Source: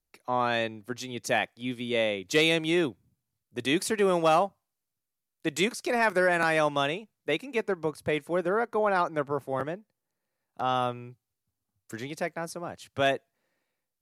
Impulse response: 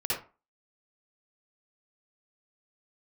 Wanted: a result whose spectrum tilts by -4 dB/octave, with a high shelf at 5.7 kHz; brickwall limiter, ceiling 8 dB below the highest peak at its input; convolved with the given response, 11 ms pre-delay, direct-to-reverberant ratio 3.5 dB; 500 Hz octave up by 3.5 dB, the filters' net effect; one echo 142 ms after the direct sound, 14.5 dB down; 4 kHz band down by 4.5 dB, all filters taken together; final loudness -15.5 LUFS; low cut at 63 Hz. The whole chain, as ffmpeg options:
-filter_complex "[0:a]highpass=63,equalizer=f=500:t=o:g=4.5,equalizer=f=4000:t=o:g=-3.5,highshelf=f=5700:g=-6.5,alimiter=limit=0.126:level=0:latency=1,aecho=1:1:142:0.188,asplit=2[s0][s1];[1:a]atrim=start_sample=2205,adelay=11[s2];[s1][s2]afir=irnorm=-1:irlink=0,volume=0.282[s3];[s0][s3]amix=inputs=2:normalize=0,volume=3.98"

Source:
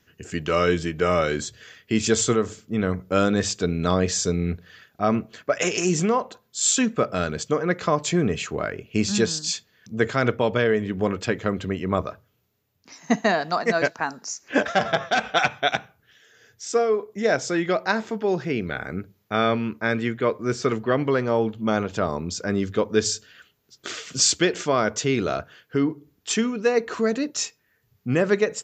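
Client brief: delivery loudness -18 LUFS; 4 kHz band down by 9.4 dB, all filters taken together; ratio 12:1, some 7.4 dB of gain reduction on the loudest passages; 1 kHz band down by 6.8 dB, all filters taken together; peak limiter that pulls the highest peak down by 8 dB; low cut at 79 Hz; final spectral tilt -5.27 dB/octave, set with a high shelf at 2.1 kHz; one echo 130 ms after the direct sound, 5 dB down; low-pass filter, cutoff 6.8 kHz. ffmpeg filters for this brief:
-af "highpass=79,lowpass=6800,equalizer=f=1000:t=o:g=-8,highshelf=f=2100:g=-7.5,equalizer=f=4000:t=o:g=-3.5,acompressor=threshold=0.0631:ratio=12,alimiter=limit=0.0944:level=0:latency=1,aecho=1:1:130:0.562,volume=4.73"

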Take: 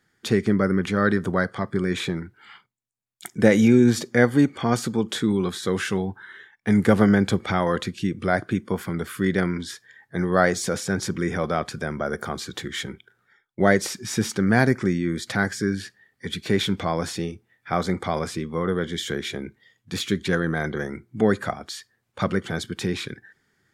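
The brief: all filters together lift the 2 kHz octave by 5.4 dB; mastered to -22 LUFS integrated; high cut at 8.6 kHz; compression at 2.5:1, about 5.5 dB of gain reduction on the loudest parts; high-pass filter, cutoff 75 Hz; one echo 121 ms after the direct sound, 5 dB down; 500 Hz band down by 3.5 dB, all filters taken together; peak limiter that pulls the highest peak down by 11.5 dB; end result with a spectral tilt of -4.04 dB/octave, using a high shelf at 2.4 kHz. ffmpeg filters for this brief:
-af "highpass=75,lowpass=8600,equalizer=f=500:t=o:g=-5,equalizer=f=2000:t=o:g=5.5,highshelf=f=2400:g=4,acompressor=threshold=0.1:ratio=2.5,alimiter=limit=0.133:level=0:latency=1,aecho=1:1:121:0.562,volume=2"

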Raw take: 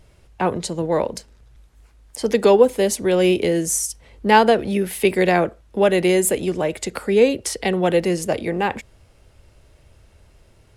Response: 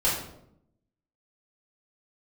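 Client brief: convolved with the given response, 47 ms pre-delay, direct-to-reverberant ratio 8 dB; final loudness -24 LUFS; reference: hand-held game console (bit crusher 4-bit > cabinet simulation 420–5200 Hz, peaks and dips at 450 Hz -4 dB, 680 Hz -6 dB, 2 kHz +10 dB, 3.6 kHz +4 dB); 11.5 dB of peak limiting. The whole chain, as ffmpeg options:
-filter_complex "[0:a]alimiter=limit=0.2:level=0:latency=1,asplit=2[s0][s1];[1:a]atrim=start_sample=2205,adelay=47[s2];[s1][s2]afir=irnorm=-1:irlink=0,volume=0.1[s3];[s0][s3]amix=inputs=2:normalize=0,acrusher=bits=3:mix=0:aa=0.000001,highpass=420,equalizer=f=450:t=q:w=4:g=-4,equalizer=f=680:t=q:w=4:g=-6,equalizer=f=2000:t=q:w=4:g=10,equalizer=f=3600:t=q:w=4:g=4,lowpass=f=5200:w=0.5412,lowpass=f=5200:w=1.3066,volume=0.944"

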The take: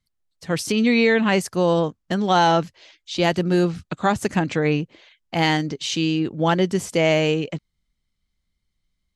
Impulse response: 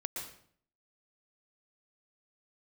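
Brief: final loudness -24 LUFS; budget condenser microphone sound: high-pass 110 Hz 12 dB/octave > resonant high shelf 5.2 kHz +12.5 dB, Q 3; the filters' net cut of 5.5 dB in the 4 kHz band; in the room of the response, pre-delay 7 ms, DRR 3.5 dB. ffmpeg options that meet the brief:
-filter_complex "[0:a]equalizer=f=4000:t=o:g=-3.5,asplit=2[s0][s1];[1:a]atrim=start_sample=2205,adelay=7[s2];[s1][s2]afir=irnorm=-1:irlink=0,volume=0.596[s3];[s0][s3]amix=inputs=2:normalize=0,highpass=110,highshelf=f=5200:t=q:w=3:g=12.5,volume=0.531"

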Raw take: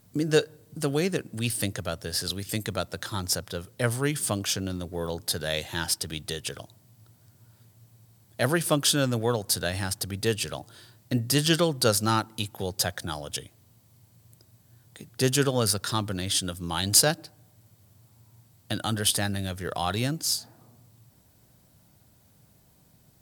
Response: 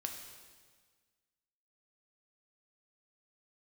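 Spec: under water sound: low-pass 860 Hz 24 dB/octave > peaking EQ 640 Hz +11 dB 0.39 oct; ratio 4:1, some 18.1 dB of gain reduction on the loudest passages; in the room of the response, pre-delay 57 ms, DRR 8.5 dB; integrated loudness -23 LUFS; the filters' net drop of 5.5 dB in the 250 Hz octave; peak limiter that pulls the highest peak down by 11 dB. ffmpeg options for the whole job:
-filter_complex "[0:a]equalizer=f=250:t=o:g=-8.5,acompressor=threshold=0.0141:ratio=4,alimiter=level_in=1.41:limit=0.0631:level=0:latency=1,volume=0.708,asplit=2[s0][s1];[1:a]atrim=start_sample=2205,adelay=57[s2];[s1][s2]afir=irnorm=-1:irlink=0,volume=0.398[s3];[s0][s3]amix=inputs=2:normalize=0,lowpass=f=860:w=0.5412,lowpass=f=860:w=1.3066,equalizer=f=640:t=o:w=0.39:g=11,volume=8.91"

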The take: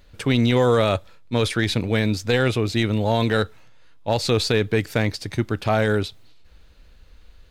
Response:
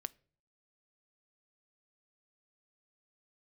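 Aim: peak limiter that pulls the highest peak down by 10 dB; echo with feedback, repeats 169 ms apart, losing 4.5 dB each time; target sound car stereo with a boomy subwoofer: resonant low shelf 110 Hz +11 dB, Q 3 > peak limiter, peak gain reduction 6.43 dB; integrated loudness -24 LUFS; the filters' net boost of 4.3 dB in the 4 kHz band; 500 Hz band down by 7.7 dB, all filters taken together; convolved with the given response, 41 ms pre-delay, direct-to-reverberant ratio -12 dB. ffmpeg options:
-filter_complex "[0:a]equalizer=f=500:t=o:g=-8.5,equalizer=f=4000:t=o:g=5,alimiter=limit=0.133:level=0:latency=1,aecho=1:1:169|338|507|676|845|1014|1183|1352|1521:0.596|0.357|0.214|0.129|0.0772|0.0463|0.0278|0.0167|0.01,asplit=2[s0][s1];[1:a]atrim=start_sample=2205,adelay=41[s2];[s1][s2]afir=irnorm=-1:irlink=0,volume=5.31[s3];[s0][s3]amix=inputs=2:normalize=0,lowshelf=f=110:t=q:w=3:g=11,volume=0.355,alimiter=limit=0.2:level=0:latency=1"

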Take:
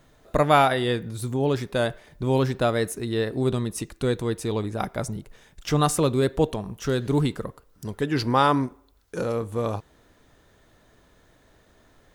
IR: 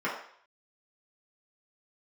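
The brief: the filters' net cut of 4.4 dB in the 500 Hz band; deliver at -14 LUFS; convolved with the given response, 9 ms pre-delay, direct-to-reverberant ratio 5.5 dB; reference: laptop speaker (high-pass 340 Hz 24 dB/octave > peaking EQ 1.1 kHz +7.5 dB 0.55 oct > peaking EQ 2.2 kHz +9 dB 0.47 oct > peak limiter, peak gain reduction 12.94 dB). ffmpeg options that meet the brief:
-filter_complex "[0:a]equalizer=f=500:t=o:g=-5.5,asplit=2[s0][s1];[1:a]atrim=start_sample=2205,adelay=9[s2];[s1][s2]afir=irnorm=-1:irlink=0,volume=0.168[s3];[s0][s3]amix=inputs=2:normalize=0,highpass=f=340:w=0.5412,highpass=f=340:w=1.3066,equalizer=f=1100:t=o:w=0.55:g=7.5,equalizer=f=2200:t=o:w=0.47:g=9,volume=5.62,alimiter=limit=0.944:level=0:latency=1"

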